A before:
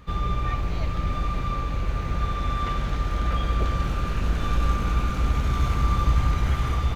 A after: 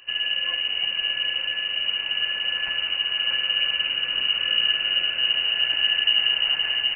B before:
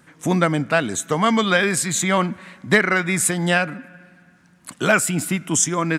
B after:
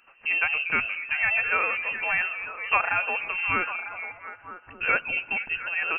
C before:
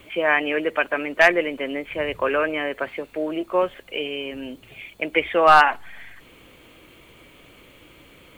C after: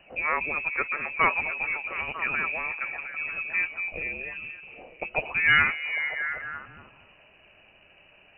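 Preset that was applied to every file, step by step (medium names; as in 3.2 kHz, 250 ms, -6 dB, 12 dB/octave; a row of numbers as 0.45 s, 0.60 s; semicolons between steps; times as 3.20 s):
repeats whose band climbs or falls 237 ms, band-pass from 410 Hz, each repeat 0.7 oct, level -3 dB; frequency inversion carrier 2.9 kHz; peak normalisation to -9 dBFS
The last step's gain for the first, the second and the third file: -2.5 dB, -7.0 dB, -7.5 dB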